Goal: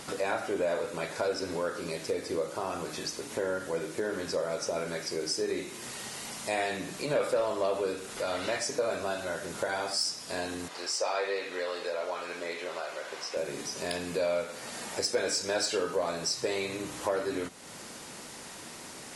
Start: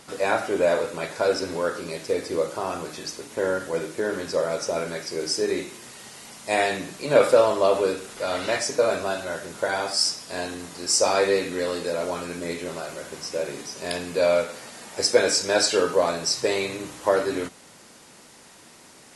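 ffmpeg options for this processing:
-filter_complex "[0:a]acontrast=81,asettb=1/sr,asplit=3[a][b][c];[a]atrim=end=10.684[d];[b]atrim=start=10.68:end=13.37,asetpts=PTS-STARTPTS,afade=t=in:d=0.004:c=qsin,afade=t=out:st=2.686:d=0.004:c=qsin,acrossover=split=430 5000:gain=0.1 1 0.251[e][f][g];[e][f][g]amix=inputs=3:normalize=0[h];[c]atrim=start=13.366[i];[d][h]acrossfade=d=0.004:c1=hsin:c2=qsin[j];[j][i]acrossfade=d=0.004:c1=qsin:c2=hsin,acompressor=threshold=-36dB:ratio=2,volume=-2dB"

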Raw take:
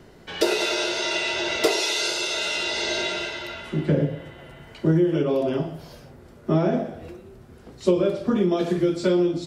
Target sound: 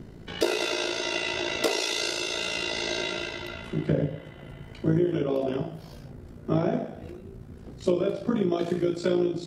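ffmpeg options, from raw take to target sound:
-filter_complex "[0:a]tremolo=f=56:d=0.621,acrossover=split=300[a][b];[a]acompressor=mode=upward:threshold=-31dB:ratio=2.5[c];[c][b]amix=inputs=2:normalize=0,volume=-1.5dB"

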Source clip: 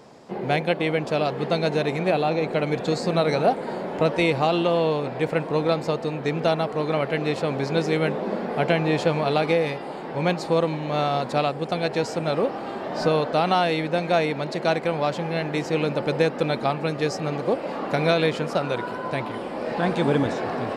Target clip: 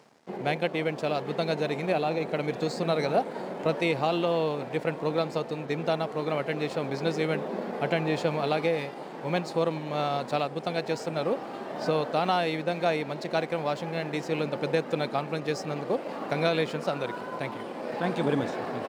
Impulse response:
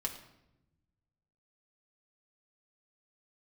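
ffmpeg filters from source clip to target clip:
-af "atempo=1.1,areverse,acompressor=mode=upward:threshold=-38dB:ratio=2.5,areverse,aeval=exprs='sgn(val(0))*max(abs(val(0))-0.00376,0)':c=same,highpass=120,volume=-4.5dB"

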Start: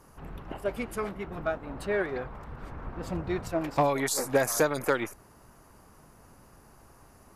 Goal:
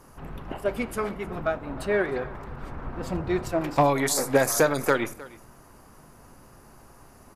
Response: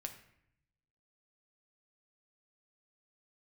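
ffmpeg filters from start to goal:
-filter_complex "[0:a]aecho=1:1:310:0.1,asplit=2[a][b];[1:a]atrim=start_sample=2205,asetrate=79380,aresample=44100[c];[b][c]afir=irnorm=-1:irlink=0,volume=4dB[d];[a][d]amix=inputs=2:normalize=0"

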